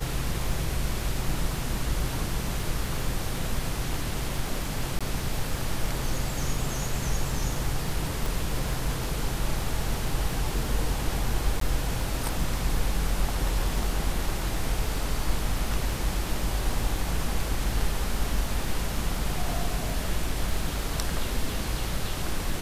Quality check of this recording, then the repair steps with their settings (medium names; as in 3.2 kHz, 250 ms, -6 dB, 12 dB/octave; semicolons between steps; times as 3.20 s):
crackle 24 per s -33 dBFS
4.99–5.01 s: dropout 16 ms
8.26 s: pop
11.60–11.61 s: dropout 13 ms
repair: de-click; interpolate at 4.99 s, 16 ms; interpolate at 11.60 s, 13 ms